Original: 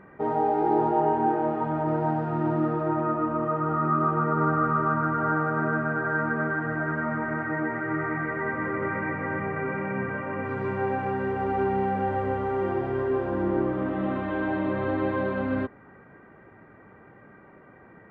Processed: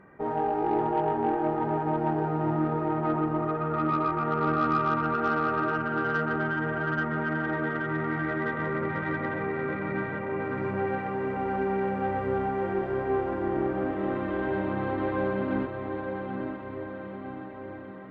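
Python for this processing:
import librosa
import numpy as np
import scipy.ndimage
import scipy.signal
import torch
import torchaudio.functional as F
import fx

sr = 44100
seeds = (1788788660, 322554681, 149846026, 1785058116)

y = fx.echo_diffused(x, sr, ms=881, feedback_pct=61, wet_db=-5.5)
y = fx.cheby_harmonics(y, sr, harmonics=(6,), levels_db=(-27,), full_scale_db=-10.0)
y = y * librosa.db_to_amplitude(-3.5)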